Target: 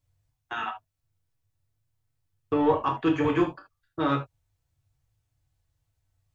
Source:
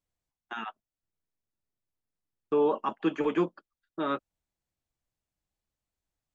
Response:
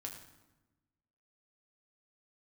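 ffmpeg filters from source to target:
-filter_complex "[0:a]aeval=exprs='0.178*(cos(1*acos(clip(val(0)/0.178,-1,1)))-cos(1*PI/2))+0.00794*(cos(5*acos(clip(val(0)/0.178,-1,1)))-cos(5*PI/2))':channel_layout=same,lowshelf=frequency=160:width_type=q:width=3:gain=9[link_01];[1:a]atrim=start_sample=2205,atrim=end_sample=3528[link_02];[link_01][link_02]afir=irnorm=-1:irlink=0,volume=8dB"

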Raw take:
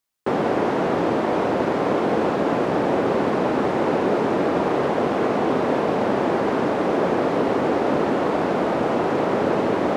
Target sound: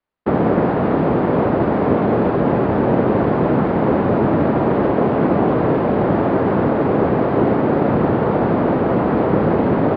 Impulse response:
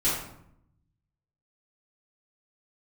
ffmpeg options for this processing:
-filter_complex "[0:a]bandreject=frequency=368.5:width_type=h:width=4,bandreject=frequency=737:width_type=h:width=4,bandreject=frequency=1105.5:width_type=h:width=4,bandreject=frequency=1474:width_type=h:width=4,acrossover=split=220|590|2100[link_01][link_02][link_03][link_04];[link_04]adynamicsmooth=sensitivity=2:basefreq=2700[link_05];[link_01][link_02][link_03][link_05]amix=inputs=4:normalize=0,asplit=3[link_06][link_07][link_08];[link_07]asetrate=22050,aresample=44100,atempo=2,volume=-1dB[link_09];[link_08]asetrate=35002,aresample=44100,atempo=1.25992,volume=-1dB[link_10];[link_06][link_09][link_10]amix=inputs=3:normalize=0,aresample=11025,aresample=44100,volume=1dB"

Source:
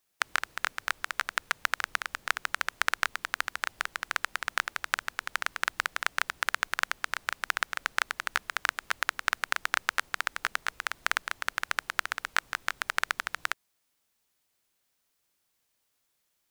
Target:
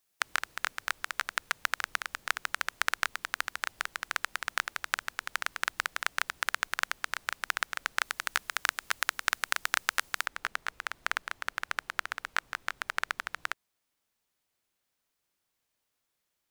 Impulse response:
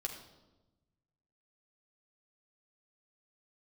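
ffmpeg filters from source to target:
-af "asetnsamples=nb_out_samples=441:pad=0,asendcmd='8.02 highshelf g 8;10.26 highshelf g -4',highshelf=frequency=3800:gain=3,volume=-2.5dB"

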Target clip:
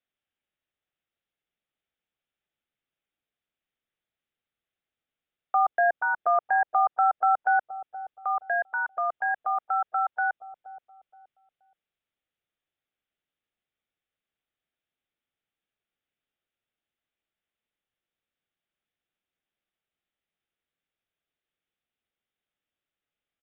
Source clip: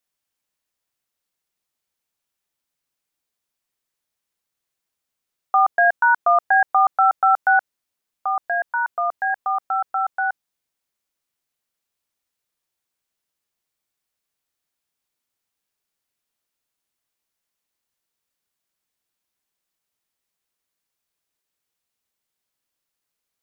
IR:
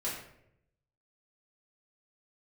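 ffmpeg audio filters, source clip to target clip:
-filter_complex "[0:a]equalizer=frequency=1000:width=6.4:gain=-11.5,acrossover=split=780|840[link_01][link_02][link_03];[link_01]aecho=1:1:474|948|1422:0.335|0.0971|0.0282[link_04];[link_03]alimiter=limit=-22dB:level=0:latency=1:release=82[link_05];[link_04][link_02][link_05]amix=inputs=3:normalize=0,aresample=8000,aresample=44100,volume=-3dB"

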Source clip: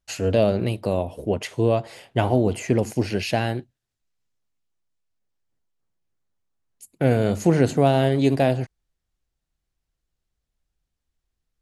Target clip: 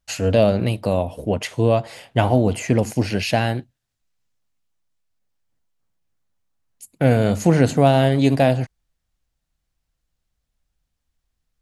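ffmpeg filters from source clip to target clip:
ffmpeg -i in.wav -af "equalizer=frequency=380:width=3.7:gain=-6.5,volume=4dB" out.wav

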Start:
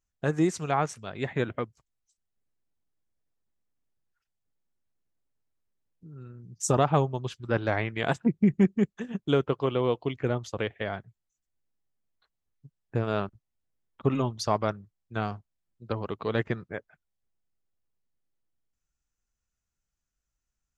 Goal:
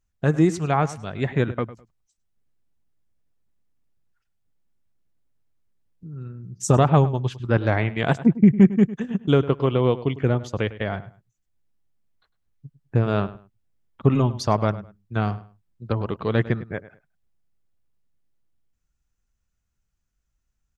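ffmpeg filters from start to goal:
ffmpeg -i in.wav -filter_complex "[0:a]bass=frequency=250:gain=6,treble=frequency=4000:gain=-3,asplit=2[link_01][link_02];[link_02]adelay=103,lowpass=frequency=4000:poles=1,volume=-16dB,asplit=2[link_03][link_04];[link_04]adelay=103,lowpass=frequency=4000:poles=1,volume=0.24[link_05];[link_03][link_05]amix=inputs=2:normalize=0[link_06];[link_01][link_06]amix=inputs=2:normalize=0,volume=4dB" out.wav

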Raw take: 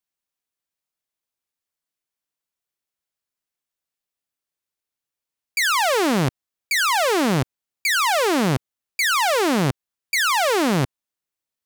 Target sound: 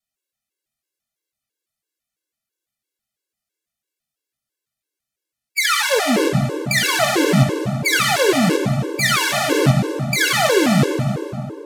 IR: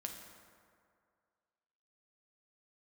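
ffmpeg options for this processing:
-filter_complex "[0:a]equalizer=frequency=970:width_type=o:width=0.48:gain=-10.5[link_01];[1:a]atrim=start_sample=2205,asetrate=28224,aresample=44100[link_02];[link_01][link_02]afir=irnorm=-1:irlink=0,afftfilt=real='re*gt(sin(2*PI*3*pts/sr)*(1-2*mod(floor(b*sr/1024/290),2)),0)':imag='im*gt(sin(2*PI*3*pts/sr)*(1-2*mod(floor(b*sr/1024/290),2)),0)':win_size=1024:overlap=0.75,volume=7dB"

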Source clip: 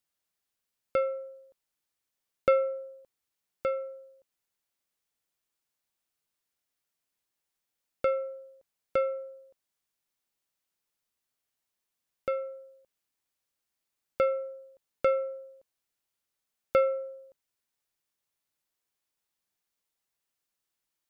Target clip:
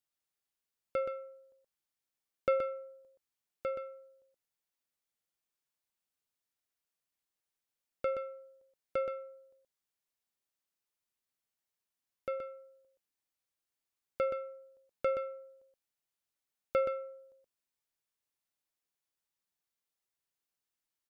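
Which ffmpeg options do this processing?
ffmpeg -i in.wav -af "aecho=1:1:124:0.447,volume=-6.5dB" out.wav

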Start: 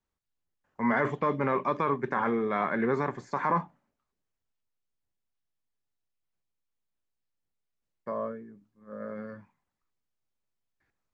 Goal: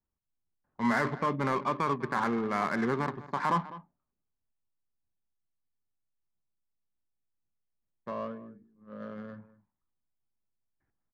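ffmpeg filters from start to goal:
ffmpeg -i in.wav -af "equalizer=frequency=490:width_type=o:width=0.82:gain=-5.5,aecho=1:1:202:0.158,adynamicsmooth=sensitivity=6.5:basefreq=1200" out.wav

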